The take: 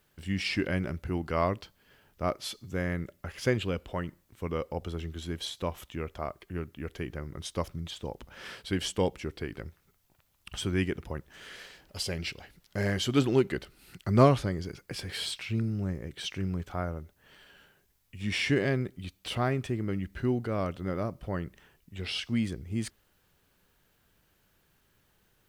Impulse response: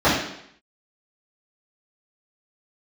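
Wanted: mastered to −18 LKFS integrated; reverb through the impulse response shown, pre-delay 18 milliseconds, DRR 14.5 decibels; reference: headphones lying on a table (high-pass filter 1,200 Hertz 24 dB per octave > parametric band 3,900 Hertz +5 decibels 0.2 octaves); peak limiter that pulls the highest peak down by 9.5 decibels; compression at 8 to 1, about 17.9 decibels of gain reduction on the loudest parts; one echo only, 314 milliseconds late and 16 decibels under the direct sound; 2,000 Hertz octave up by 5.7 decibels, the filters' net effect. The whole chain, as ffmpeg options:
-filter_complex "[0:a]equalizer=frequency=2000:width_type=o:gain=7,acompressor=threshold=-33dB:ratio=8,alimiter=level_in=6.5dB:limit=-24dB:level=0:latency=1,volume=-6.5dB,aecho=1:1:314:0.158,asplit=2[link_01][link_02];[1:a]atrim=start_sample=2205,adelay=18[link_03];[link_02][link_03]afir=irnorm=-1:irlink=0,volume=-37.5dB[link_04];[link_01][link_04]amix=inputs=2:normalize=0,highpass=frequency=1200:width=0.5412,highpass=frequency=1200:width=1.3066,equalizer=frequency=3900:width_type=o:width=0.2:gain=5,volume=26.5dB"

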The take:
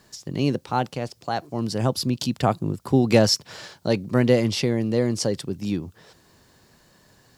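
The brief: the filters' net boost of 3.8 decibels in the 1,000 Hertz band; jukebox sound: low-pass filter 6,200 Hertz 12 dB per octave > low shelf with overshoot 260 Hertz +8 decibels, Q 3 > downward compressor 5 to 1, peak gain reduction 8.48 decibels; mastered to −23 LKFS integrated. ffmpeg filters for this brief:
ffmpeg -i in.wav -af "lowpass=6200,lowshelf=frequency=260:width_type=q:width=3:gain=8,equalizer=frequency=1000:width_type=o:gain=6.5,acompressor=threshold=-14dB:ratio=5,volume=-2.5dB" out.wav

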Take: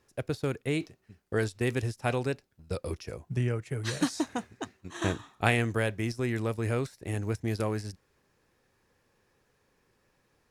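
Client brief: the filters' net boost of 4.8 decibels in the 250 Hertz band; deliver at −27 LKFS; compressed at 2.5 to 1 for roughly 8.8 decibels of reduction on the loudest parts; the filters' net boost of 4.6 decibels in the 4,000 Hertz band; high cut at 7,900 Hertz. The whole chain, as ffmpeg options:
ffmpeg -i in.wav -af "lowpass=7900,equalizer=frequency=250:width_type=o:gain=6,equalizer=frequency=4000:width_type=o:gain=6,acompressor=threshold=-31dB:ratio=2.5,volume=8dB" out.wav

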